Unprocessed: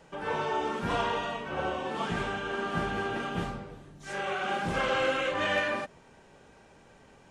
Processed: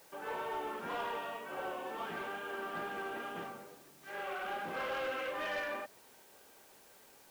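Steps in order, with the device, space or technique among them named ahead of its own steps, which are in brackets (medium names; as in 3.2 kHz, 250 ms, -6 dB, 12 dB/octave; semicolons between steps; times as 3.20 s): tape answering machine (band-pass 320–2900 Hz; saturation -25.5 dBFS, distortion -16 dB; wow and flutter 21 cents; white noise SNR 21 dB); trim -6 dB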